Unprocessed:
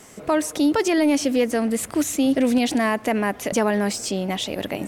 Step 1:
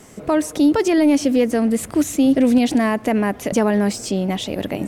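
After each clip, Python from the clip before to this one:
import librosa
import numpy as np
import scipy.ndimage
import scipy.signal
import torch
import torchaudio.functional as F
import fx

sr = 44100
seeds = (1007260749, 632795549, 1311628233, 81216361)

y = fx.low_shelf(x, sr, hz=480.0, db=7.5)
y = y * librosa.db_to_amplitude(-1.0)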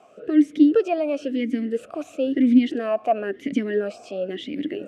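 y = fx.vowel_sweep(x, sr, vowels='a-i', hz=0.99)
y = y * librosa.db_to_amplitude(5.5)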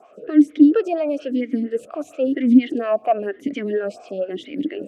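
y = fx.stagger_phaser(x, sr, hz=4.3)
y = y * librosa.db_to_amplitude(4.0)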